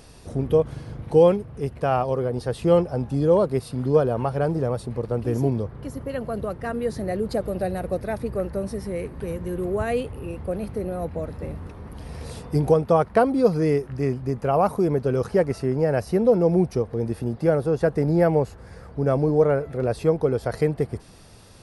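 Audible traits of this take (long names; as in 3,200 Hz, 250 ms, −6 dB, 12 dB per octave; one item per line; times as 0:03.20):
background noise floor −44 dBFS
spectral slope −6.5 dB per octave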